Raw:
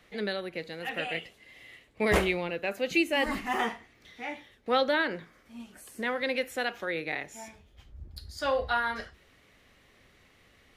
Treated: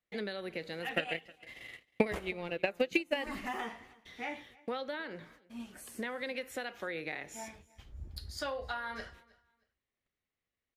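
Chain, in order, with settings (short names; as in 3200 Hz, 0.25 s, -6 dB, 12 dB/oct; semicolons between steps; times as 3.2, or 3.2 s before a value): gate -55 dBFS, range -31 dB; compressor 20:1, threshold -34 dBFS, peak gain reduction 16 dB; 0.9–3.24 transient shaper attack +12 dB, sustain -12 dB; feedback echo 0.315 s, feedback 24%, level -23.5 dB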